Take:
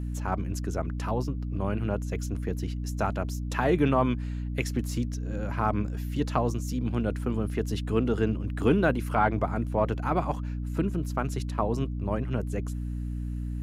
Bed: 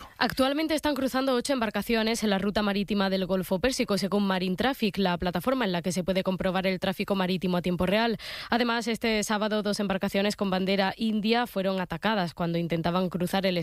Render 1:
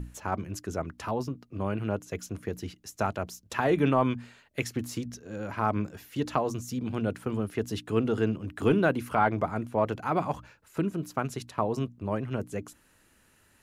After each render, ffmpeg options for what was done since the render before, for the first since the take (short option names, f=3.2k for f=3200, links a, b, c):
-af "bandreject=f=60:t=h:w=6,bandreject=f=120:t=h:w=6,bandreject=f=180:t=h:w=6,bandreject=f=240:t=h:w=6,bandreject=f=300:t=h:w=6"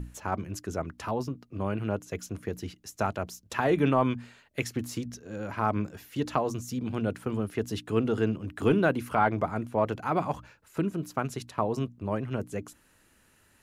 -af anull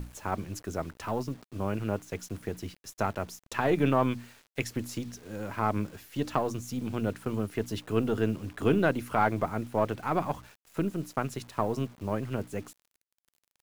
-af "aeval=exprs='if(lt(val(0),0),0.708*val(0),val(0))':c=same,acrusher=bits=8:mix=0:aa=0.000001"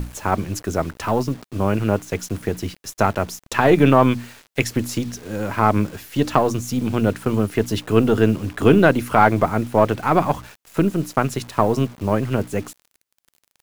-af "volume=11.5dB,alimiter=limit=-1dB:level=0:latency=1"